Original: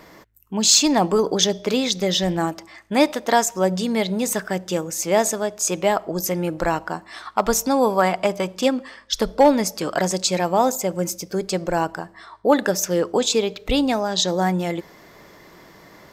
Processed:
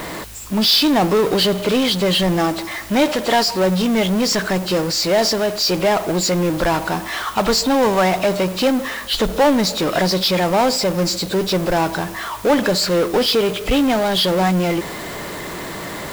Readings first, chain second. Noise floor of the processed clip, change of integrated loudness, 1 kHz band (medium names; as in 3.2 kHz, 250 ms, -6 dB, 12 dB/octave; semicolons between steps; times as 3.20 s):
-30 dBFS, +3.5 dB, +2.5 dB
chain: knee-point frequency compression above 2.4 kHz 1.5:1; power-law waveshaper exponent 0.5; word length cut 6-bit, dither triangular; trim -3 dB